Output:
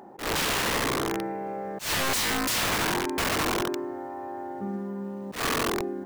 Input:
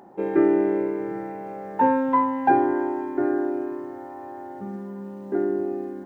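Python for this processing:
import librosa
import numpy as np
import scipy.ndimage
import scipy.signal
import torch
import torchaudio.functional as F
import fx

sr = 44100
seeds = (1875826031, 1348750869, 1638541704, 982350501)

y = fx.hum_notches(x, sr, base_hz=60, count=5)
y = (np.mod(10.0 ** (23.0 / 20.0) * y + 1.0, 2.0) - 1.0) / 10.0 ** (23.0 / 20.0)
y = fx.auto_swell(y, sr, attack_ms=132.0)
y = y * 10.0 ** (1.5 / 20.0)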